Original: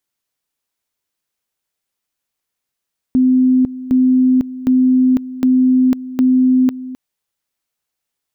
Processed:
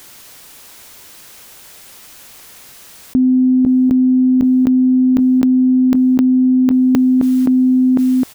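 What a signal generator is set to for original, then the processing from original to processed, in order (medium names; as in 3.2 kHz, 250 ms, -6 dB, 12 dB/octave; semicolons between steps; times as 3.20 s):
two-level tone 256 Hz -8.5 dBFS, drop 16 dB, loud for 0.50 s, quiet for 0.26 s, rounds 5
echo from a far wall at 220 m, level -25 dB; level flattener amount 100%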